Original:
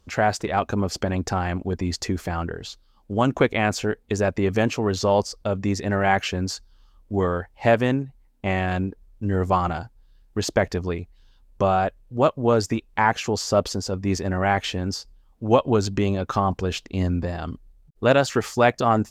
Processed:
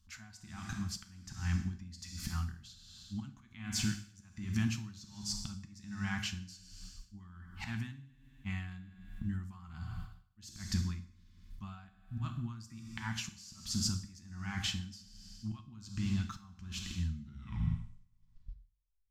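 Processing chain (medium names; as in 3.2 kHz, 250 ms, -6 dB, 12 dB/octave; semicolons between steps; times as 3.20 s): tape stop on the ending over 2.26 s; in parallel at +0.5 dB: peak limiter -14.5 dBFS, peak gain reduction 9.5 dB; on the sum: gate -45 dBFS, range -16 dB; slow attack 350 ms; compression 3:1, threshold -34 dBFS, peak gain reduction 17 dB; Chebyshev band-stop 170–1500 Hz, order 2; peaking EQ 1.9 kHz -8.5 dB 1.7 oct; hum notches 60/120 Hz; on a send at -4 dB: reverberation RT60 1.3 s, pre-delay 5 ms; on the sum: logarithmic tremolo 1.3 Hz, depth 20 dB; trim +5 dB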